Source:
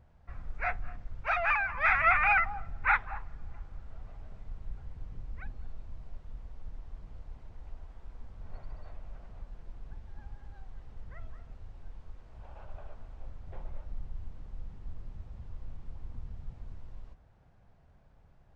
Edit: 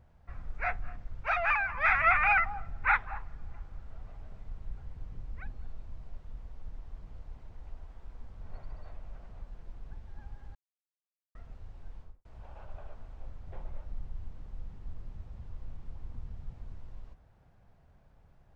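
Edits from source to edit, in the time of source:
10.55–11.35 mute
11.98–12.25 studio fade out

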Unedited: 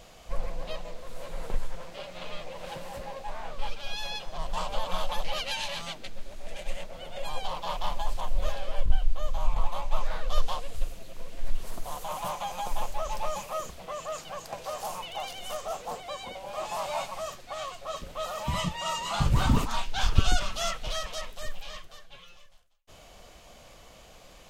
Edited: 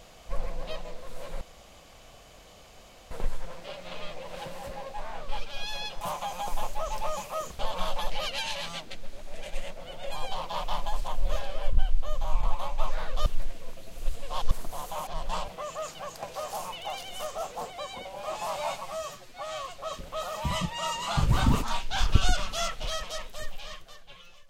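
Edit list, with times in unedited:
1.41 insert room tone 1.70 s
4.31–4.72 swap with 12.2–13.78
10.39–11.64 reverse
17.13–17.67 stretch 1.5×

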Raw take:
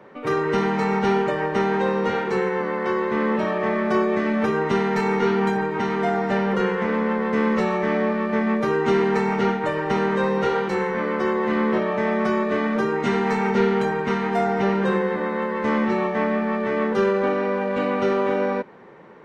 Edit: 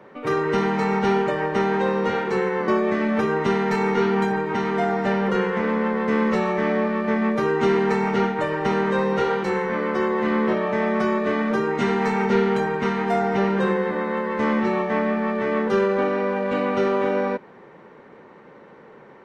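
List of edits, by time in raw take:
2.68–3.93 cut

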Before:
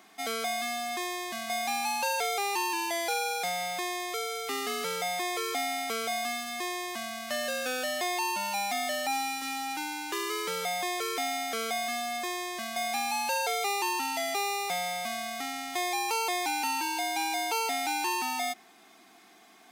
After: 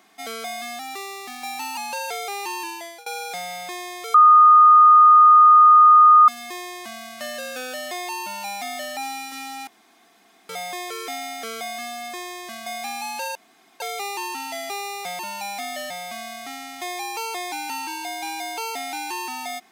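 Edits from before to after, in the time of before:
0.79–1.87 speed 110%
2.73–3.16 fade out, to -22.5 dB
4.24–6.38 bleep 1230 Hz -7.5 dBFS
8.32–9.03 copy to 14.84
9.77–10.59 room tone
13.45 insert room tone 0.45 s

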